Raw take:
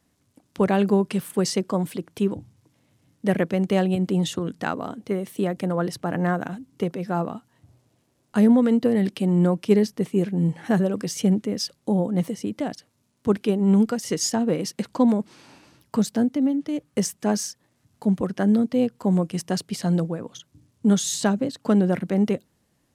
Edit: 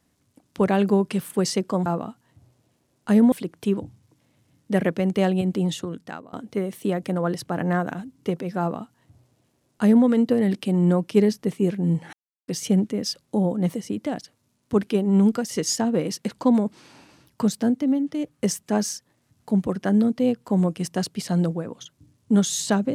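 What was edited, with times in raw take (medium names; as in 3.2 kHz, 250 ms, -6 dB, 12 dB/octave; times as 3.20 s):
3.82–4.87 s: fade out equal-power, to -22 dB
7.13–8.59 s: copy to 1.86 s
10.67–11.02 s: mute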